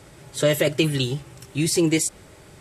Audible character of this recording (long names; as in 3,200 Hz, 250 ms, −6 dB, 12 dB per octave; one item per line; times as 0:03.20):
background noise floor −48 dBFS
spectral slope −4.5 dB per octave